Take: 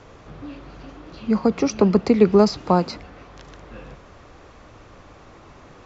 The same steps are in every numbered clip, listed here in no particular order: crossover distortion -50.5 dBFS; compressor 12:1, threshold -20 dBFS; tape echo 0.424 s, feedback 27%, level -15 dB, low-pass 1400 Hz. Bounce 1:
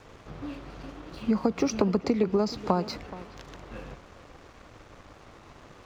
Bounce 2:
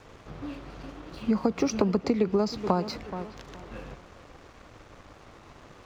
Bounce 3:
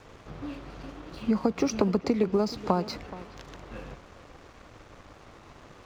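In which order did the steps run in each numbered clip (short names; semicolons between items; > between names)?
crossover distortion > compressor > tape echo; crossover distortion > tape echo > compressor; compressor > crossover distortion > tape echo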